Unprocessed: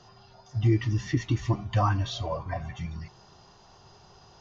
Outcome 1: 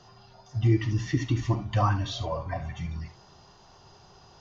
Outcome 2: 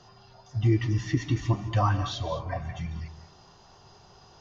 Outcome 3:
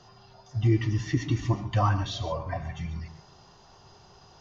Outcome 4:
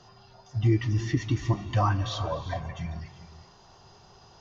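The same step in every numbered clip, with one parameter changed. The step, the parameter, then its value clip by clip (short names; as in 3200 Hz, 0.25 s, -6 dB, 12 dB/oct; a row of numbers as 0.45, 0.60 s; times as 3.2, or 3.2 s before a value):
non-linear reverb, gate: 90, 240, 160, 430 ms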